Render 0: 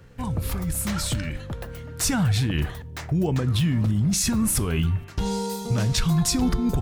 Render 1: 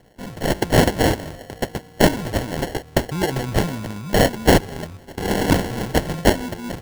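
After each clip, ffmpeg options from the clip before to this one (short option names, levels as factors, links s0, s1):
-af "aemphasis=mode=production:type=riaa,dynaudnorm=f=190:g=5:m=3.76,acrusher=samples=36:mix=1:aa=0.000001"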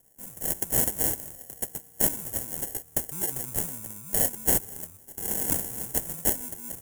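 -af "aexciter=amount=12.9:drive=7.9:freq=6700,volume=0.133"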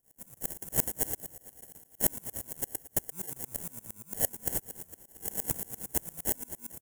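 -af "aecho=1:1:226|452|678|904|1130:0.133|0.0707|0.0375|0.0199|0.0105,acompressor=mode=upward:threshold=0.00447:ratio=2.5,aeval=exprs='val(0)*pow(10,-27*if(lt(mod(-8.7*n/s,1),2*abs(-8.7)/1000),1-mod(-8.7*n/s,1)/(2*abs(-8.7)/1000),(mod(-8.7*n/s,1)-2*abs(-8.7)/1000)/(1-2*abs(-8.7)/1000))/20)':c=same,volume=1.12"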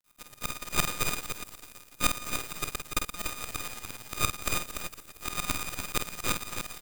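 -filter_complex "[0:a]acrusher=bits=7:dc=4:mix=0:aa=0.000001,aeval=exprs='abs(val(0))':c=same,asplit=2[s0][s1];[s1]aecho=0:1:49|178|291:0.447|0.1|0.473[s2];[s0][s2]amix=inputs=2:normalize=0,volume=1.12"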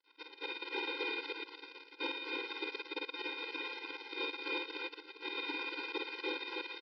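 -af "aeval=exprs='(tanh(12.6*val(0)+0.6)-tanh(0.6))/12.6':c=same,aresample=11025,aresample=44100,afftfilt=real='re*eq(mod(floor(b*sr/1024/270),2),1)':imag='im*eq(mod(floor(b*sr/1024/270),2),1)':win_size=1024:overlap=0.75,volume=2.99"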